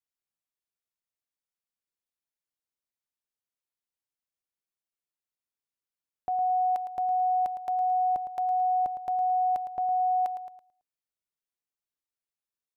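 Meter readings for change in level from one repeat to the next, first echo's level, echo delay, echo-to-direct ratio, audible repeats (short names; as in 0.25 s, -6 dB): -7.5 dB, -10.5 dB, 0.11 s, -9.5 dB, 3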